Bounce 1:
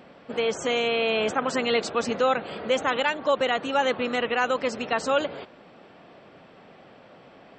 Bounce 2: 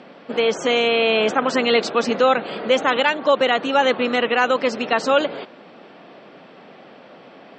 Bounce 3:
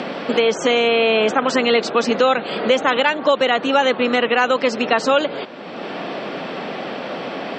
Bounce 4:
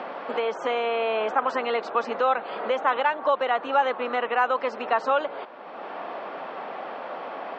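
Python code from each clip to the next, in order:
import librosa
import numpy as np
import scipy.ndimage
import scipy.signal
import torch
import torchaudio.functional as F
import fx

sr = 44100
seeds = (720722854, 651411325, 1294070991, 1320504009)

y1 = scipy.signal.sosfilt(scipy.signal.cheby1(2, 1.0, [210.0, 5100.0], 'bandpass', fs=sr, output='sos'), x)
y1 = F.gain(torch.from_numpy(y1), 7.0).numpy()
y2 = fx.band_squash(y1, sr, depth_pct=70)
y2 = F.gain(torch.from_numpy(y2), 1.5).numpy()
y3 = fx.bandpass_q(y2, sr, hz=960.0, q=1.5)
y3 = F.gain(torch.from_numpy(y3), -2.0).numpy()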